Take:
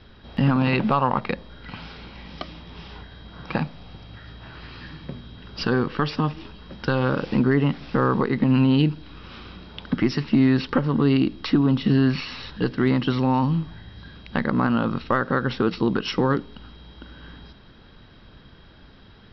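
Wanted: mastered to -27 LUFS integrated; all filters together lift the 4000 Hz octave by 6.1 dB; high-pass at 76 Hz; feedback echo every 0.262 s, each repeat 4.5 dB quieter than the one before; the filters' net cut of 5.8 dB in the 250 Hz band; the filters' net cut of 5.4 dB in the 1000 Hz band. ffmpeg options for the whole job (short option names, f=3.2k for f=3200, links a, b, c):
-af "highpass=76,equalizer=f=250:t=o:g=-6.5,equalizer=f=1k:t=o:g=-7,equalizer=f=4k:t=o:g=8.5,aecho=1:1:262|524|786|1048|1310|1572|1834|2096|2358:0.596|0.357|0.214|0.129|0.0772|0.0463|0.0278|0.0167|0.01,volume=-2dB"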